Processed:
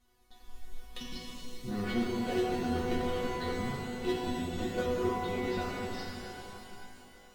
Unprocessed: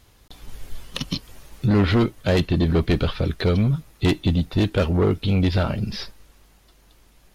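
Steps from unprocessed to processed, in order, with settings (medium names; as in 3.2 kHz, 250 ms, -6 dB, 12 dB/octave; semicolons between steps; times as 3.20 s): in parallel at -11.5 dB: sample-rate reducer 5.3 kHz; on the sum: chord resonator B3 fifth, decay 0.27 s; pitch-shifted reverb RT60 3.3 s, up +12 st, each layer -8 dB, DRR -2 dB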